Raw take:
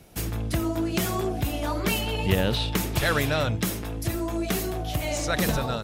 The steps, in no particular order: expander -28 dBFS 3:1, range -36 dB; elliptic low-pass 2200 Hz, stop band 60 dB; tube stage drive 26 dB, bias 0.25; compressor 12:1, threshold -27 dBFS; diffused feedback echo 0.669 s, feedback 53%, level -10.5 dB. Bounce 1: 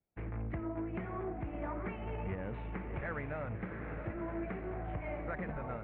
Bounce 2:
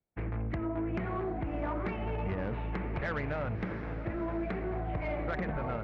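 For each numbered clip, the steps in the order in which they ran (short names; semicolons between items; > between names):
diffused feedback echo > compressor > tube stage > expander > elliptic low-pass; expander > compressor > elliptic low-pass > tube stage > diffused feedback echo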